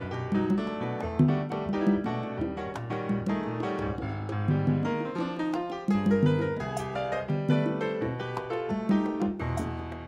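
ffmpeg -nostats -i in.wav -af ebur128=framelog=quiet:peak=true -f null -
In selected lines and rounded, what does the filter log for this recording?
Integrated loudness:
  I:         -29.2 LUFS
  Threshold: -39.2 LUFS
Loudness range:
  LRA:         2.1 LU
  Threshold: -49.2 LUFS
  LRA low:   -30.5 LUFS
  LRA high:  -28.4 LUFS
True peak:
  Peak:      -10.5 dBFS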